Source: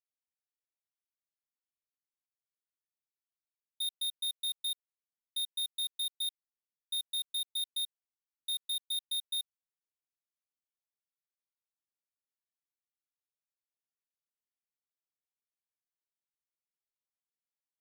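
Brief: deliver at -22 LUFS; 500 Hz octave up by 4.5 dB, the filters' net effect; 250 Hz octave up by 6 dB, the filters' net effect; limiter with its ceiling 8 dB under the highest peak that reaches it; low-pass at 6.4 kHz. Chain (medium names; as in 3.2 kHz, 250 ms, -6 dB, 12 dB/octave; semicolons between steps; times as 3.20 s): low-pass 6.4 kHz; peaking EQ 250 Hz +6.5 dB; peaking EQ 500 Hz +4 dB; trim +21.5 dB; peak limiter -18 dBFS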